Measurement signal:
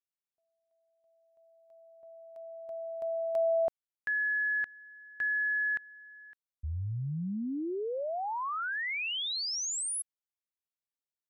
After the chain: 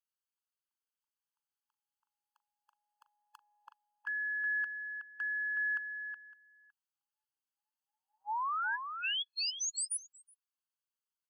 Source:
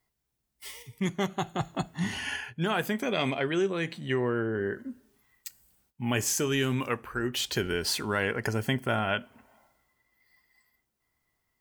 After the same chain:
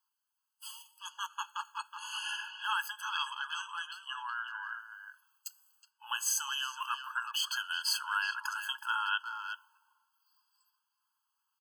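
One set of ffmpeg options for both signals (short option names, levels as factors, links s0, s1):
-filter_complex "[0:a]asplit=2[s0][s1];[s1]adelay=370,highpass=300,lowpass=3400,asoftclip=type=hard:threshold=0.0891,volume=0.447[s2];[s0][s2]amix=inputs=2:normalize=0,afftfilt=real='re*eq(mod(floor(b*sr/1024/850),2),1)':imag='im*eq(mod(floor(b*sr/1024/850),2),1)':win_size=1024:overlap=0.75"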